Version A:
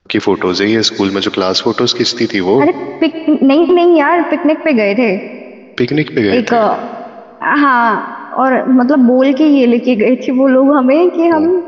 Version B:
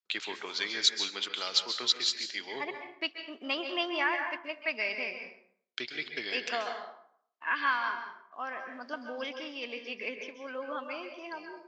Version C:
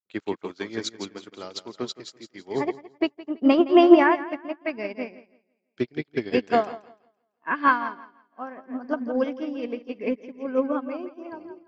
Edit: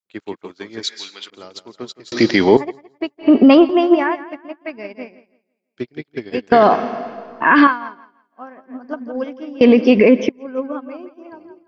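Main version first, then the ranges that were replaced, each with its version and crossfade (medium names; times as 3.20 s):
C
0.83–1.30 s: from B
2.12–2.57 s: from A
3.24–3.67 s: from A, crossfade 0.10 s
6.52–7.67 s: from A
9.61–10.29 s: from A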